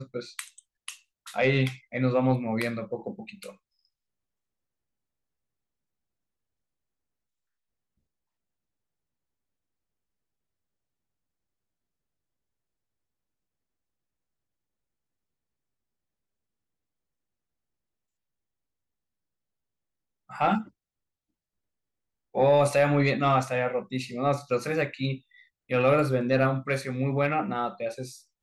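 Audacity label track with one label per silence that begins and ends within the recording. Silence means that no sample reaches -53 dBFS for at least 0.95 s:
3.550000	20.290000	silence
20.690000	22.340000	silence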